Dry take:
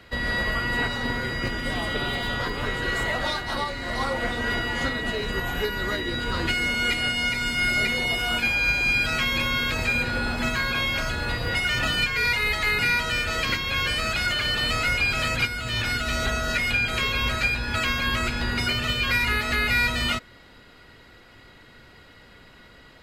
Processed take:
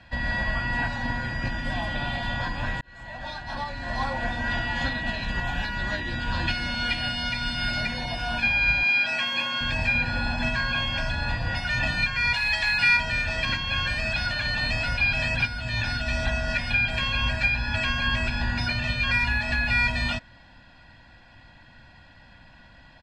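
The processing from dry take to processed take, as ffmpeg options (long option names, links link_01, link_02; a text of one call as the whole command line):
ffmpeg -i in.wav -filter_complex "[0:a]asettb=1/sr,asplit=3[link_01][link_02][link_03];[link_01]atrim=end=4.514[link_04];[link_02]atrim=start=4.51:end=7.81,asetpts=PTS-STARTPTS,afade=type=in:duration=0.004:curve=qsin,afade=type=out:start_time=3.296:duration=0.004:curve=qsin,equalizer=frequency=3300:width=1.5:gain=5[link_05];[link_03]atrim=start=7.806[link_06];[link_04][link_05]acrossfade=duration=0.004:curve1=hsin:curve2=qsin[link_07];[link_07][link_06]acrossfade=duration=0.004:curve1=qsin:curve2=hsin,asettb=1/sr,asplit=3[link_08][link_09][link_10];[link_08]atrim=end=8.834[link_11];[link_09]atrim=start=8.83:end=9.61,asetpts=PTS-STARTPTS,afade=type=in:duration=0.004:curve=qsin,afade=type=out:start_time=0.776:duration=0.004:curve=qsin,highpass=320[link_12];[link_10]atrim=start=9.606[link_13];[link_11][link_12]acrossfade=duration=0.004:curve1=hsin:curve2=qsin[link_14];[link_14][link_13]acrossfade=duration=0.004:curve1=qsin:curve2=hsin,asettb=1/sr,asplit=3[link_15][link_16][link_17];[link_15]atrim=end=12.344[link_18];[link_16]atrim=start=12.34:end=12.97,asetpts=PTS-STARTPTS,afade=type=in:duration=0.004:curve=qsin,afade=type=out:start_time=0.626:duration=0.004:curve=qsin,tiltshelf=frequency=860:gain=-6[link_19];[link_17]atrim=start=12.966[link_20];[link_18][link_19]acrossfade=duration=0.004:curve1=hsin:curve2=qsin[link_21];[link_21][link_20]acrossfade=duration=0.004:curve1=qsin:curve2=hsin,asplit=2[link_22][link_23];[link_22]atrim=end=2.81,asetpts=PTS-STARTPTS,afade=type=out:start_time=2.806:duration=0.004:curve=hsin[link_24];[link_23]atrim=start=2.81,asetpts=PTS-STARTPTS,afade=type=in:duration=1.08[link_25];[link_24][link_25]concat=n=2:v=0:a=1,lowpass=4800,aecho=1:1:1.2:1,volume=-4dB" out.wav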